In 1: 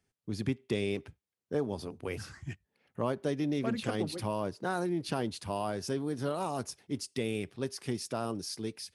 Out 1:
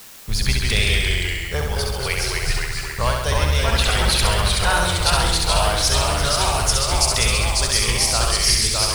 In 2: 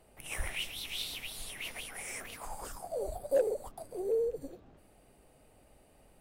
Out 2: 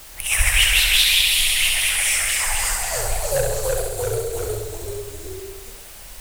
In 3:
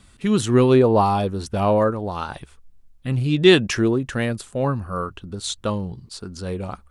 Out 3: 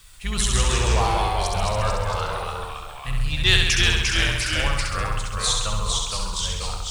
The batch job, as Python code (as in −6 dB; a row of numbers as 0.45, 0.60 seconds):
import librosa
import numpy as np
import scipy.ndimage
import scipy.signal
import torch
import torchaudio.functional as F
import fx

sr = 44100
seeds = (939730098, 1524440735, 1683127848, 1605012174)

p1 = fx.octave_divider(x, sr, octaves=2, level_db=-2.0)
p2 = 10.0 ** (-17.0 / 20.0) * np.tanh(p1 / 10.0 ** (-17.0 / 20.0))
p3 = p1 + (p2 * librosa.db_to_amplitude(-5.0))
p4 = fx.tone_stack(p3, sr, knobs='10-0-10')
p5 = fx.dereverb_blind(p4, sr, rt60_s=0.69)
p6 = fx.echo_pitch(p5, sr, ms=130, semitones=-1, count=3, db_per_echo=-3.0)
p7 = p6 + fx.room_flutter(p6, sr, wall_m=11.4, rt60_s=1.0, dry=0)
p8 = fx.quant_dither(p7, sr, seeds[0], bits=10, dither='triangular')
y = p8 * 10.0 ** (-3 / 20.0) / np.max(np.abs(p8))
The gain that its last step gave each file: +18.5, +18.0, +2.5 decibels